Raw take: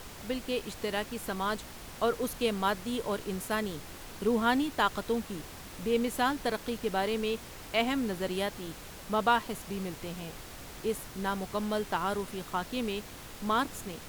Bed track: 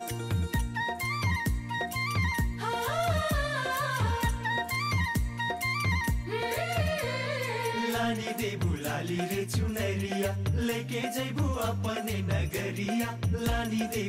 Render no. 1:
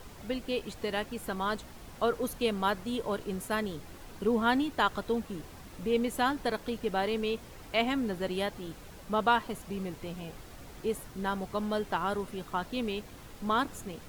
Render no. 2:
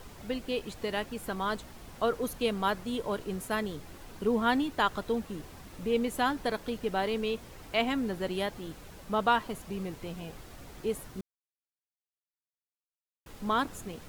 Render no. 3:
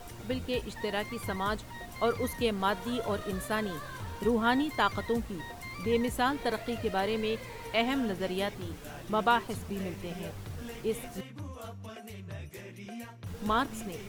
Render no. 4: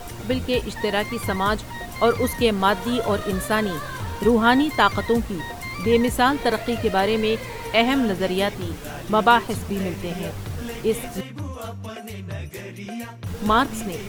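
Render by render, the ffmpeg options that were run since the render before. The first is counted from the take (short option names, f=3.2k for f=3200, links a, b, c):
-af "afftdn=nr=7:nf=-46"
-filter_complex "[0:a]asplit=3[a][b][c];[a]atrim=end=11.21,asetpts=PTS-STARTPTS,afade=t=out:st=11.206:d=0.004:c=hsin[d];[b]atrim=start=11.21:end=13.26,asetpts=PTS-STARTPTS,volume=0[e];[c]atrim=start=13.26,asetpts=PTS-STARTPTS,afade=t=in:d=0.004:c=hsin[f];[d][e][f]concat=n=3:v=0:a=1"
-filter_complex "[1:a]volume=-13dB[a];[0:a][a]amix=inputs=2:normalize=0"
-af "volume=10dB"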